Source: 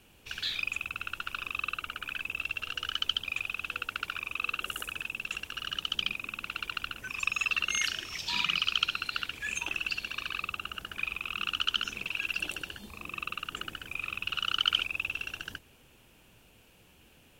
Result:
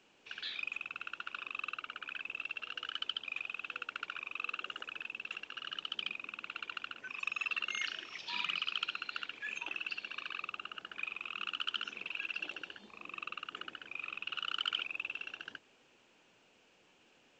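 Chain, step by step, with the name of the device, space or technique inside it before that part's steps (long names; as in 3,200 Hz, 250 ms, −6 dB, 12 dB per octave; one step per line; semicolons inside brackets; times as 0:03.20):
telephone (band-pass filter 280–3,500 Hz; soft clipping −16 dBFS, distortion −22 dB; level −5 dB; A-law companding 128 kbit/s 16,000 Hz)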